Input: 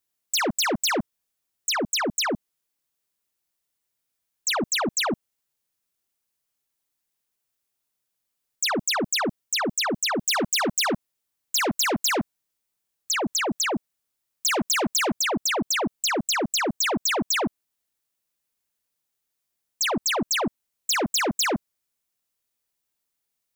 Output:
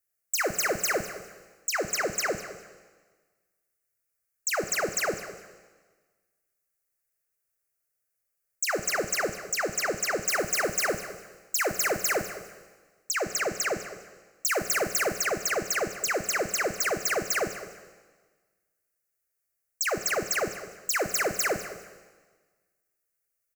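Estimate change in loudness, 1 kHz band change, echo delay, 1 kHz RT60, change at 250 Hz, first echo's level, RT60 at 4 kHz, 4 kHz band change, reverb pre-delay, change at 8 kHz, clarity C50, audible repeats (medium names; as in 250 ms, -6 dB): -3.5 dB, -5.0 dB, 200 ms, 1.4 s, -10.5 dB, -15.5 dB, 1.3 s, -9.5 dB, 8 ms, -2.5 dB, 9.5 dB, 2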